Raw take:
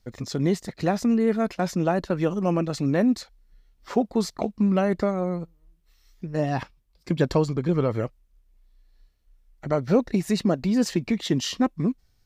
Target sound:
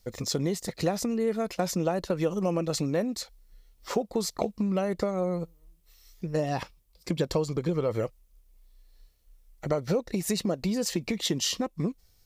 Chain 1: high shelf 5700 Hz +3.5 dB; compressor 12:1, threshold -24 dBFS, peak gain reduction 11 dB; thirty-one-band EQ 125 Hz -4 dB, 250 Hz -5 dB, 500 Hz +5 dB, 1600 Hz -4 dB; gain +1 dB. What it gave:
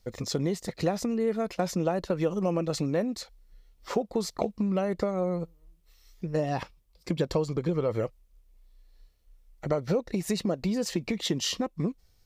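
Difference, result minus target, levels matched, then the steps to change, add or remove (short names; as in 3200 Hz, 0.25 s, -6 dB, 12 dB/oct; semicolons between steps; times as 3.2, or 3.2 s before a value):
8000 Hz band -4.0 dB
change: high shelf 5700 Hz +11.5 dB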